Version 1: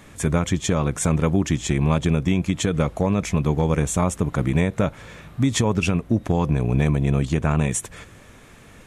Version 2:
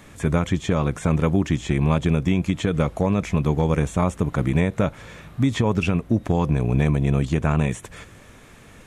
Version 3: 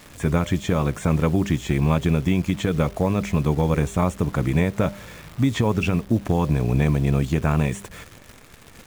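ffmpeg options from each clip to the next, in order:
ffmpeg -i in.wav -filter_complex "[0:a]acrossover=split=3400[link_01][link_02];[link_02]acompressor=threshold=-39dB:ratio=4:attack=1:release=60[link_03];[link_01][link_03]amix=inputs=2:normalize=0" out.wav
ffmpeg -i in.wav -af "bandreject=frequency=199.8:width_type=h:width=4,bandreject=frequency=399.6:width_type=h:width=4,bandreject=frequency=599.4:width_type=h:width=4,acrusher=bits=8:dc=4:mix=0:aa=0.000001" out.wav

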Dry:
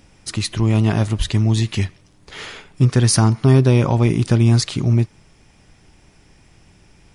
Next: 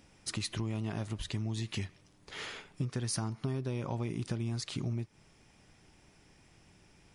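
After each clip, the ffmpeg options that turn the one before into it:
ffmpeg -i in.wav -af "acompressor=threshold=-22dB:ratio=6,lowshelf=frequency=78:gain=-8,volume=-8.5dB" out.wav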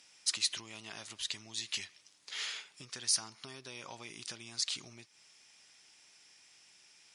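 ffmpeg -i in.wav -af "bandpass=frequency=5600:width_type=q:width=0.84:csg=0,volume=8.5dB" out.wav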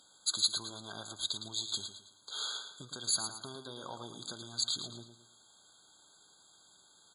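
ffmpeg -i in.wav -filter_complex "[0:a]asplit=2[link_01][link_02];[link_02]aecho=0:1:111|222|333|444:0.376|0.135|0.0487|0.0175[link_03];[link_01][link_03]amix=inputs=2:normalize=0,afftfilt=real='re*eq(mod(floor(b*sr/1024/1600),2),0)':imag='im*eq(mod(floor(b*sr/1024/1600),2),0)':win_size=1024:overlap=0.75,volume=4dB" out.wav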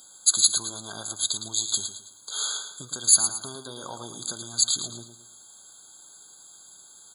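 ffmpeg -i in.wav -af "aexciter=amount=4.1:drive=2.6:freq=5600,volume=6dB" out.wav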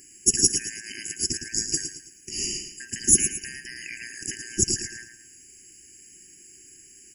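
ffmpeg -i in.wav -af "afftfilt=real='real(if(lt(b,272),68*(eq(floor(b/68),0)*3+eq(floor(b/68),1)*0+eq(floor(b/68),2)*1+eq(floor(b/68),3)*2)+mod(b,68),b),0)':imag='imag(if(lt(b,272),68*(eq(floor(b/68),0)*3+eq(floor(b/68),1)*0+eq(floor(b/68),2)*1+eq(floor(b/68),3)*2)+mod(b,68),b),0)':win_size=2048:overlap=0.75" out.wav

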